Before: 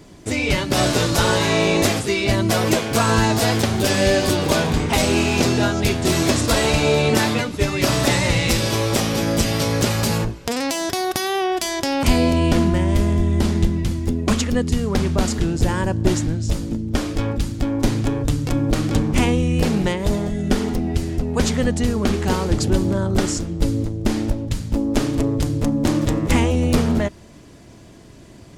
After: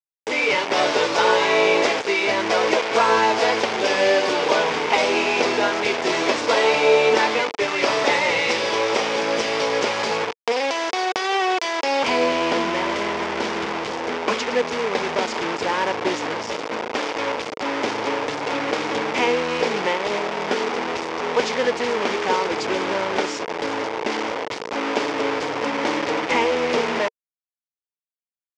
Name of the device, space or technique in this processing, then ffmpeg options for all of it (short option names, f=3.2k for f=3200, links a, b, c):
hand-held game console: -af "acrusher=bits=3:mix=0:aa=0.000001,highpass=460,equalizer=f=460:t=q:w=4:g=8,equalizer=f=930:t=q:w=4:g=6,equalizer=f=2.2k:t=q:w=4:g=4,equalizer=f=4.1k:t=q:w=4:g=-5,lowpass=f=5.2k:w=0.5412,lowpass=f=5.2k:w=1.3066"